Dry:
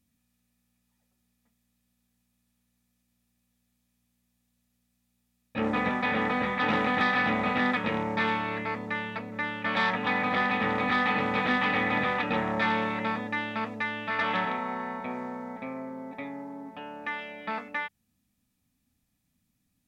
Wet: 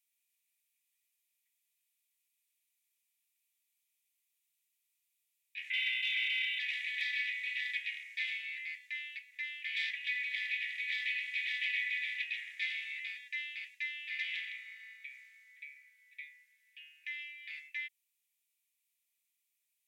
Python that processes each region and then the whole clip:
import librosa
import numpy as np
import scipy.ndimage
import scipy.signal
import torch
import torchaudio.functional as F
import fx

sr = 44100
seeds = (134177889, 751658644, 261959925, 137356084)

y = fx.chain(x, sr, fx.steep_lowpass(hz=1900.0, slope=72),
    fx.leveller(passes=1),
    fx.ring_mod(carrier_hz=1800.0), at=(5.7, 6.59))
y = scipy.signal.sosfilt(scipy.signal.butter(12, 2000.0, 'highpass', fs=sr, output='sos'), y)
y = fx.peak_eq(y, sr, hz=4800.0, db=-7.0, octaves=1.0)